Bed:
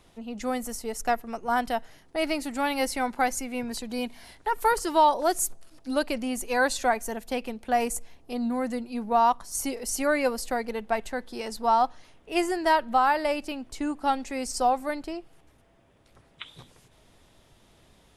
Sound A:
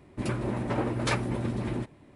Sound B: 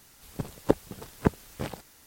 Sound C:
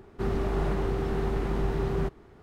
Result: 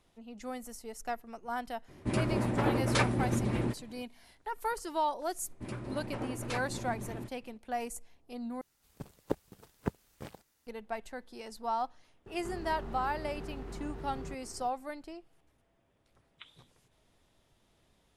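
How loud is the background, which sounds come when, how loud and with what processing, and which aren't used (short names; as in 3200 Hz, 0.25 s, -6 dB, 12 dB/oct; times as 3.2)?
bed -11 dB
1.88 add A
5.43 add A -10 dB
8.61 replace with B -10 dB + G.711 law mismatch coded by A
12.26 add C -0.5 dB + compressor 4:1, threshold -41 dBFS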